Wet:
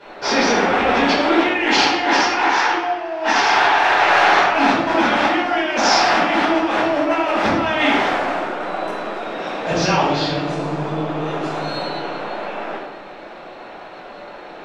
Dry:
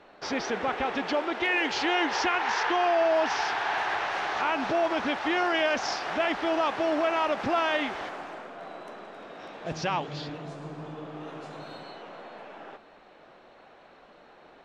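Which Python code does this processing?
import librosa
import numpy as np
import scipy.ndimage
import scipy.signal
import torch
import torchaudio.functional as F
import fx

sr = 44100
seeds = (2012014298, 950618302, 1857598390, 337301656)

y = fx.low_shelf(x, sr, hz=160.0, db=-8.0)
y = fx.over_compress(y, sr, threshold_db=-30.0, ratio=-0.5)
y = fx.room_shoebox(y, sr, seeds[0], volume_m3=370.0, walls='mixed', distance_m=4.8)
y = y * librosa.db_to_amplitude(2.0)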